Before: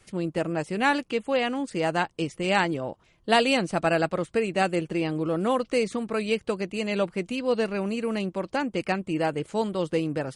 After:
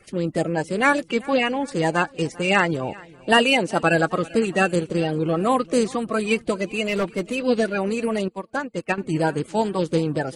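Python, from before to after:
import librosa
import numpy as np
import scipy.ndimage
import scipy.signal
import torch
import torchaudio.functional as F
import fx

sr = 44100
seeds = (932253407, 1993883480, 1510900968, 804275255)

y = fx.spec_quant(x, sr, step_db=30)
y = fx.highpass(y, sr, hz=130.0, slope=12, at=(3.32, 3.83))
y = fx.clip_hard(y, sr, threshold_db=-23.0, at=(6.84, 7.35))
y = fx.echo_feedback(y, sr, ms=393, feedback_pct=49, wet_db=-23)
y = fx.upward_expand(y, sr, threshold_db=-38.0, expansion=2.5, at=(8.28, 8.98))
y = y * librosa.db_to_amplitude(5.0)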